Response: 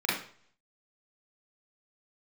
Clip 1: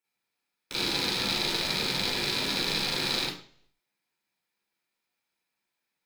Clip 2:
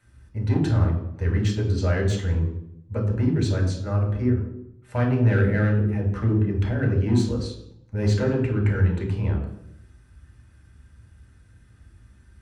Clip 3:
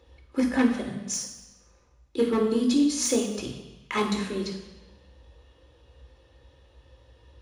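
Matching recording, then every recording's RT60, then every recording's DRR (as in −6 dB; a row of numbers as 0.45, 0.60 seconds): 1; 0.50, 0.75, 1.1 seconds; −8.5, −1.5, −3.5 decibels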